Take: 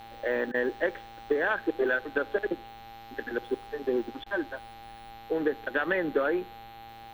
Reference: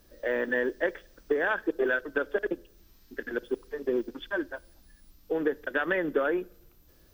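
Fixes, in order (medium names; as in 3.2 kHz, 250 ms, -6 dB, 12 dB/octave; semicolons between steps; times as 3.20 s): de-hum 113.7 Hz, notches 38; band-stop 800 Hz, Q 30; interpolate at 0.52/4.24 s, 21 ms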